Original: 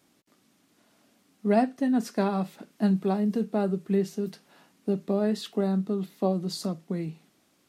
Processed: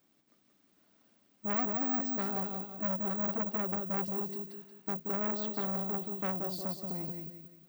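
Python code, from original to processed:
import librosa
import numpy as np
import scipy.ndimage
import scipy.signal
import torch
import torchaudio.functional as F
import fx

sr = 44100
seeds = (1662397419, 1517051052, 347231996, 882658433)

p1 = fx.high_shelf(x, sr, hz=9900.0, db=-7.0)
p2 = p1 + fx.echo_feedback(p1, sr, ms=179, feedback_pct=39, wet_db=-5.0, dry=0)
p3 = (np.kron(scipy.signal.resample_poly(p2, 1, 2), np.eye(2)[0]) * 2)[:len(p2)]
p4 = fx.transformer_sat(p3, sr, knee_hz=2400.0)
y = p4 * librosa.db_to_amplitude(-8.0)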